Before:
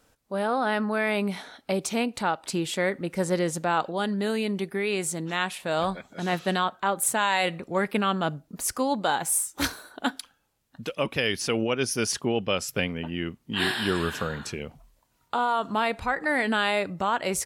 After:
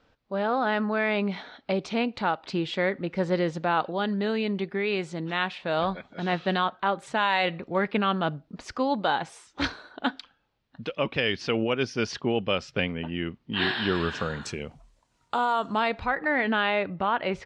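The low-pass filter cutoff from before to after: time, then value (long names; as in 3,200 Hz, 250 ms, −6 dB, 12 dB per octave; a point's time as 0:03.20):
low-pass filter 24 dB per octave
0:13.89 4,400 Hz
0:14.51 8,400 Hz
0:15.59 8,400 Hz
0:16.24 3,400 Hz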